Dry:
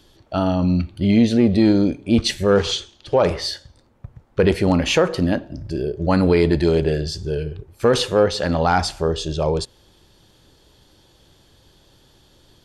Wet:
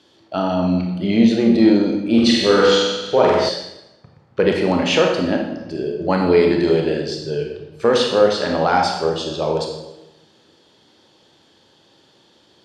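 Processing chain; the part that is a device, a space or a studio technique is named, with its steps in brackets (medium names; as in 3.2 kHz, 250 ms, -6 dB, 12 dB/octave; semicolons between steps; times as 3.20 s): supermarket ceiling speaker (band-pass 210–6000 Hz; reverberation RT60 1.0 s, pre-delay 24 ms, DRR 1.5 dB); 2.05–3.49 s: flutter echo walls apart 8 m, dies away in 0.97 s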